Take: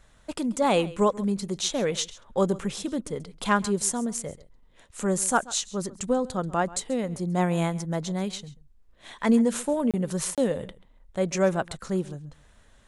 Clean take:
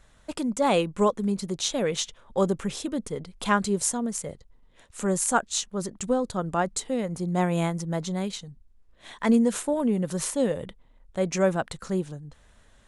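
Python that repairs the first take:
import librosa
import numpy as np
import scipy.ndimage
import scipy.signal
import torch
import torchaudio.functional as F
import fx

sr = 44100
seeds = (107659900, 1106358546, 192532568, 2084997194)

y = fx.fix_declip(x, sr, threshold_db=-11.0)
y = fx.fix_interpolate(y, sr, at_s=(9.91, 10.35), length_ms=27.0)
y = fx.fix_echo_inverse(y, sr, delay_ms=135, level_db=-19.5)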